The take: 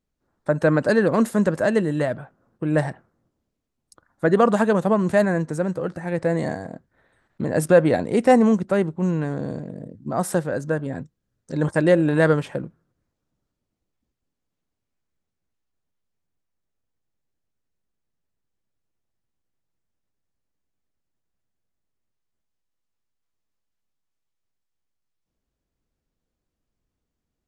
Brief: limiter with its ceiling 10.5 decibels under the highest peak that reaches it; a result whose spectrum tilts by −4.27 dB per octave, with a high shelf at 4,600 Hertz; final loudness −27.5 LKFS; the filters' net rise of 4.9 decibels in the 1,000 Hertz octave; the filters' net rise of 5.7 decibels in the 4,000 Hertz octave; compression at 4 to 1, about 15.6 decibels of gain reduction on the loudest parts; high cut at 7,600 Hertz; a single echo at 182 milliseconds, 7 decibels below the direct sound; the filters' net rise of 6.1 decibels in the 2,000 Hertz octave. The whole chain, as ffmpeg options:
ffmpeg -i in.wav -af "lowpass=7600,equalizer=frequency=1000:width_type=o:gain=5.5,equalizer=frequency=2000:width_type=o:gain=5,equalizer=frequency=4000:width_type=o:gain=7,highshelf=frequency=4600:gain=-3.5,acompressor=threshold=-27dB:ratio=4,alimiter=limit=-22dB:level=0:latency=1,aecho=1:1:182:0.447,volume=4.5dB" out.wav

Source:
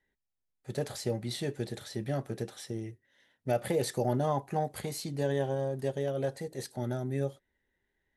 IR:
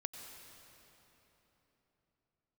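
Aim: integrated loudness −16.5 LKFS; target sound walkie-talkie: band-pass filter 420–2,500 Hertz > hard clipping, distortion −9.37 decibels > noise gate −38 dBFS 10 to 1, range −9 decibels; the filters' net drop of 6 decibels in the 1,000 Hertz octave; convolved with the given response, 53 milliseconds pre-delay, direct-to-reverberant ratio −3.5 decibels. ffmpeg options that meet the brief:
-filter_complex "[0:a]equalizer=frequency=1000:width_type=o:gain=-8.5,asplit=2[link_01][link_02];[1:a]atrim=start_sample=2205,adelay=53[link_03];[link_02][link_03]afir=irnorm=-1:irlink=0,volume=5dB[link_04];[link_01][link_04]amix=inputs=2:normalize=0,highpass=420,lowpass=2500,asoftclip=type=hard:threshold=-31.5dB,agate=range=-9dB:threshold=-38dB:ratio=10,volume=21dB"

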